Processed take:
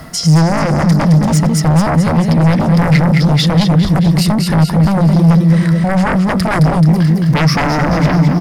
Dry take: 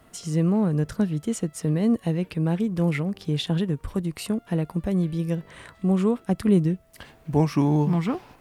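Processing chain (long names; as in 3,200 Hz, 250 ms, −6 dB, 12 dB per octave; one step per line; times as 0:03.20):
parametric band 2,800 Hz −6 dB 0.74 octaves
on a send: repeating echo 216 ms, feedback 56%, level −5.5 dB
on the sum: reversed playback
upward compression, threshold −31 dBFS
reversed playback
sine wavefolder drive 20 dB, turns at −3 dBFS
brickwall limiter −5 dBFS, peak gain reduction 2.5 dB
thirty-one-band graphic EQ 160 Hz +9 dB, 400 Hz −8 dB, 2,000 Hz +5 dB, 5,000 Hz +11 dB, 8,000 Hz −4 dB
level −6 dB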